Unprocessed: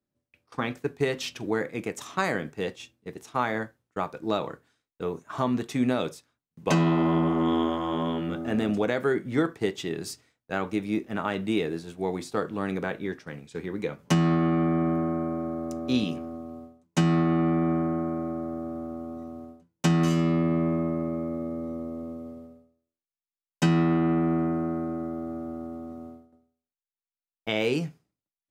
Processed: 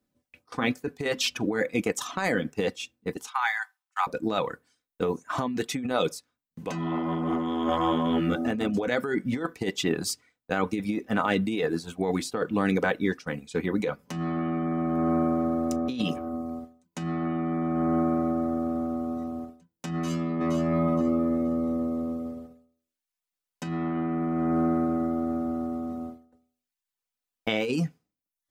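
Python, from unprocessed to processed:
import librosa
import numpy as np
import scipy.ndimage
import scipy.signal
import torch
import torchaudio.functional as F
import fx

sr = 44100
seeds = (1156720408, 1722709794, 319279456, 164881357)

y = fx.steep_highpass(x, sr, hz=770.0, slope=96, at=(3.27, 4.07))
y = fx.echo_throw(y, sr, start_s=19.93, length_s=0.6, ms=470, feedback_pct=20, wet_db=-11.5)
y = fx.dereverb_blind(y, sr, rt60_s=0.6)
y = y + 0.35 * np.pad(y, (int(4.0 * sr / 1000.0), 0))[:len(y)]
y = fx.over_compress(y, sr, threshold_db=-30.0, ratio=-1.0)
y = F.gain(torch.from_numpy(y), 4.0).numpy()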